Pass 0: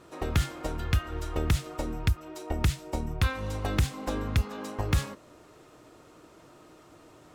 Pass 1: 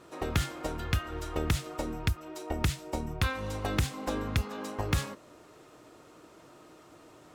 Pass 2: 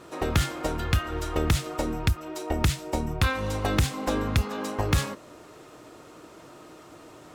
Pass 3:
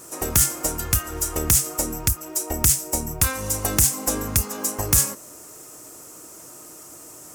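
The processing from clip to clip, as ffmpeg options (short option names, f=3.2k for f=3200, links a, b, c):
-af "lowshelf=f=96:g=-7"
-af "asoftclip=type=tanh:threshold=-18.5dB,volume=6.5dB"
-af "aexciter=amount=9.1:drive=6.8:freq=5.6k,volume=-1dB"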